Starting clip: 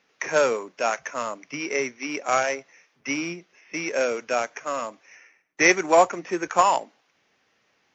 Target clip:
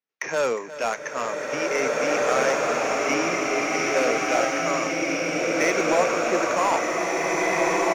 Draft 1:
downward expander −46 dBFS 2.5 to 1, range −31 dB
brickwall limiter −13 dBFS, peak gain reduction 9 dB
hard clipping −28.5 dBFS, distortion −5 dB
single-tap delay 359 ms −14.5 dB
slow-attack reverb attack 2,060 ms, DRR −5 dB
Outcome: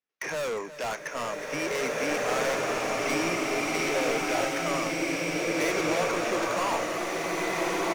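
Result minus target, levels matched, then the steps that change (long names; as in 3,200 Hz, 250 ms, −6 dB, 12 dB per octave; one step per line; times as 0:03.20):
hard clipping: distortion +14 dB
change: hard clipping −17 dBFS, distortion −20 dB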